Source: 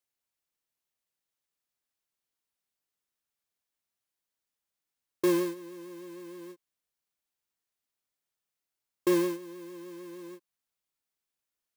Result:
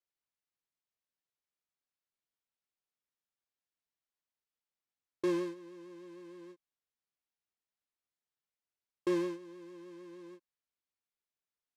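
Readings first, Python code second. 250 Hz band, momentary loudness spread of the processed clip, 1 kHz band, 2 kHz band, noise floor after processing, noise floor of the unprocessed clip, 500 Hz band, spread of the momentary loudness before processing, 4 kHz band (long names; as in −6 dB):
−6.0 dB, 19 LU, −6.5 dB, −6.5 dB, below −85 dBFS, below −85 dBFS, −6.0 dB, 19 LU, −8.5 dB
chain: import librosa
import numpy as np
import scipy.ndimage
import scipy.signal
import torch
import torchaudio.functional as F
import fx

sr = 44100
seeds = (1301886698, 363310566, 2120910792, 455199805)

y = fx.air_absorb(x, sr, metres=77.0)
y = y * 10.0 ** (-6.0 / 20.0)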